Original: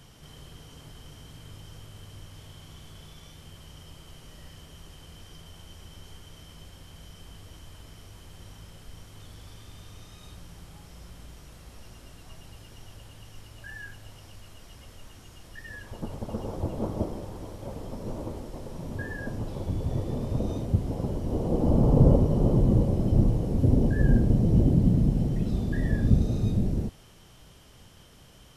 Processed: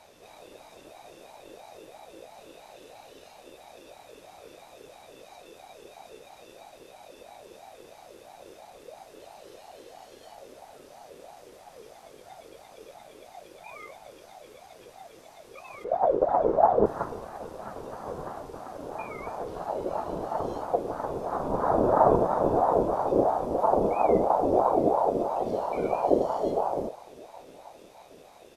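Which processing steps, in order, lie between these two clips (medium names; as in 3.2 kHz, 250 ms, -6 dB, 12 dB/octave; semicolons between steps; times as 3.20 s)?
15.84–16.86 s: RIAA curve playback; feedback delay 771 ms, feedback 53%, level -22 dB; ring modulator with a swept carrier 600 Hz, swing 30%, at 3 Hz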